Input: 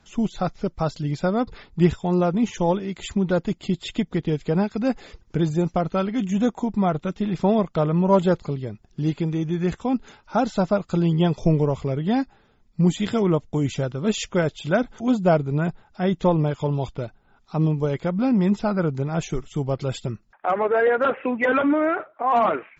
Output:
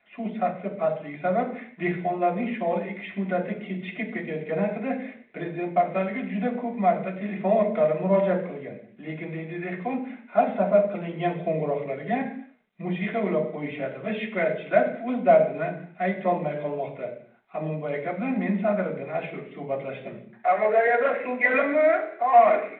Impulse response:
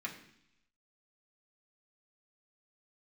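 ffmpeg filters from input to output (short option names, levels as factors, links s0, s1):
-filter_complex "[0:a]highpass=310,equalizer=f=320:t=q:w=4:g=-9,equalizer=f=620:t=q:w=4:g=9,equalizer=f=930:t=q:w=4:g=-5,equalizer=f=1300:t=q:w=4:g=-8,equalizer=f=2100:t=q:w=4:g=7,lowpass=f=2500:w=0.5412,lowpass=f=2500:w=1.3066,bandreject=f=60:t=h:w=6,bandreject=f=120:t=h:w=6,bandreject=f=180:t=h:w=6,bandreject=f=240:t=h:w=6,bandreject=f=300:t=h:w=6,bandreject=f=360:t=h:w=6,bandreject=f=420:t=h:w=6[s0];[1:a]atrim=start_sample=2205,afade=t=out:st=0.36:d=0.01,atrim=end_sample=16317[s1];[s0][s1]afir=irnorm=-1:irlink=0" -ar 8000 -c:a adpcm_g726 -b:a 40k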